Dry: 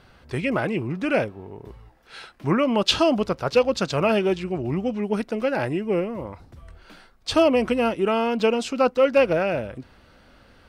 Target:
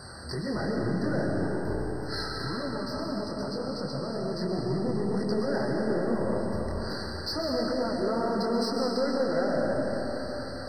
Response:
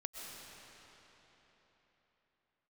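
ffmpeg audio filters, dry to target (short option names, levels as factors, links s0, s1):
-filter_complex "[0:a]highpass=f=51:w=0.5412,highpass=f=51:w=1.3066,equalizer=f=4800:w=4.3:g=12,acontrast=69,alimiter=level_in=1.06:limit=0.0631:level=0:latency=1:release=200,volume=0.944,asettb=1/sr,asplit=3[s0][s1][s2];[s0]atrim=end=2.334[s3];[s1]atrim=start=2.33:end=4.34,asetpts=PTS-STARTPTS,afade=t=in:d=0.004:c=qsin,afade=t=out:st=2.006:d=0.004:c=qsin,acrossover=split=300|1300|5800[s4][s5][s6][s7];[s4]acompressor=threshold=0.0126:ratio=4[s8];[s5]acompressor=threshold=0.01:ratio=4[s9];[s6]acompressor=threshold=0.00355:ratio=4[s10];[s7]acompressor=threshold=0.00251:ratio=4[s11];[s8][s9][s10][s11]amix=inputs=4:normalize=0[s12];[s2]atrim=start=4.336[s13];[s3][s12]acrossfade=d=0.004:c1=hsin:c2=qsin[s14];[s14][s13]acrossfade=d=0.004:c1=qsin:c2=hsin,flanger=delay=20:depth=6.2:speed=2.3,aeval=exprs='val(0)+0.00126*sin(2*PI*8500*n/s)':c=same,aeval=exprs='0.0596*(cos(1*acos(clip(val(0)/0.0596,-1,1)))-cos(1*PI/2))+0.000376*(cos(4*acos(clip(val(0)/0.0596,-1,1)))-cos(4*PI/2))+0.00473*(cos(5*acos(clip(val(0)/0.0596,-1,1)))-cos(5*PI/2))':c=same[s15];[1:a]atrim=start_sample=2205[s16];[s15][s16]afir=irnorm=-1:irlink=0,afftfilt=real='re*eq(mod(floor(b*sr/1024/2000),2),0)':imag='im*eq(mod(floor(b*sr/1024/2000),2),0)':win_size=1024:overlap=0.75,volume=2.24"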